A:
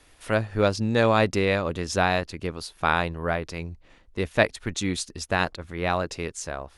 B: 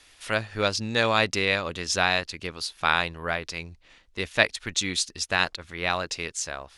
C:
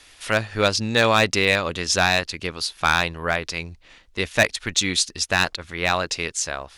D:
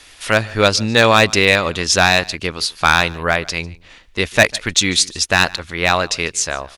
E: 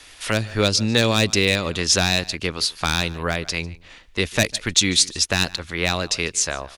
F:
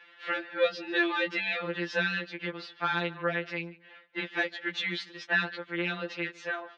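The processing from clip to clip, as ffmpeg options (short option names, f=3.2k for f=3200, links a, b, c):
-af "equalizer=f=4.3k:w=0.3:g=13.5,volume=-7dB"
-af "volume=13.5dB,asoftclip=hard,volume=-13.5dB,volume=5.5dB"
-af "aecho=1:1:148:0.0708,volume=6dB"
-filter_complex "[0:a]acrossover=split=430|3000[a][b][c];[b]acompressor=threshold=-23dB:ratio=6[d];[a][d][c]amix=inputs=3:normalize=0,volume=-1.5dB"
-af "highpass=390,equalizer=f=410:t=q:w=4:g=-5,equalizer=f=700:t=q:w=4:g=-7,equalizer=f=1.1k:t=q:w=4:g=-8,equalizer=f=1.6k:t=q:w=4:g=3,equalizer=f=2.4k:t=q:w=4:g=-6,lowpass=f=2.6k:w=0.5412,lowpass=f=2.6k:w=1.3066,afftfilt=real='re*2.83*eq(mod(b,8),0)':imag='im*2.83*eq(mod(b,8),0)':win_size=2048:overlap=0.75"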